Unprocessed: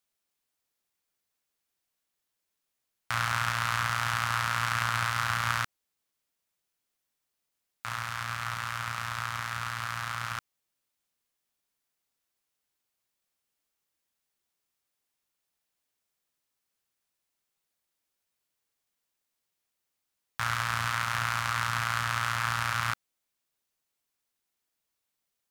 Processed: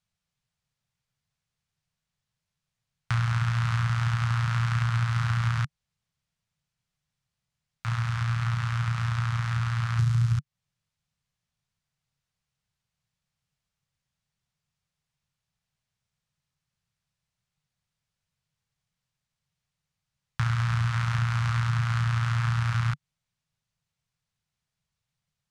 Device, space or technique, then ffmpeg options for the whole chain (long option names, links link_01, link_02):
jukebox: -filter_complex "[0:a]asplit=3[link_01][link_02][link_03];[link_01]afade=type=out:start_time=9.98:duration=0.02[link_04];[link_02]bass=frequency=250:gain=15,treble=frequency=4000:gain=12,afade=type=in:start_time=9.98:duration=0.02,afade=type=out:start_time=10.38:duration=0.02[link_05];[link_03]afade=type=in:start_time=10.38:duration=0.02[link_06];[link_04][link_05][link_06]amix=inputs=3:normalize=0,lowpass=6800,lowshelf=frequency=210:width_type=q:width=3:gain=12.5,acompressor=threshold=-23dB:ratio=4"